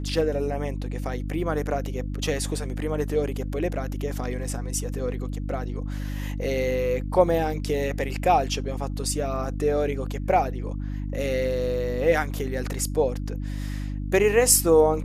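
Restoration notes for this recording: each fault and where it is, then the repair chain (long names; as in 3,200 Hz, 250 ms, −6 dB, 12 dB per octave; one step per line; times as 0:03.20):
mains hum 50 Hz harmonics 6 −30 dBFS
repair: hum removal 50 Hz, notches 6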